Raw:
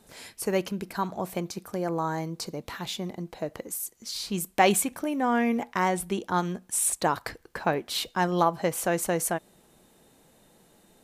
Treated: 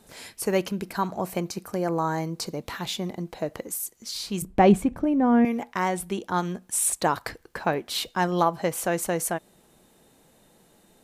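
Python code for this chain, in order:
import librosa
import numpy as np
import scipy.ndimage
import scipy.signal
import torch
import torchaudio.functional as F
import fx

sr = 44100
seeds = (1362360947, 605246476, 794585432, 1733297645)

y = fx.notch(x, sr, hz=3500.0, q=10.0, at=(0.98, 2.37))
y = fx.tilt_eq(y, sr, slope=-4.5, at=(4.42, 5.45))
y = fx.rider(y, sr, range_db=3, speed_s=2.0)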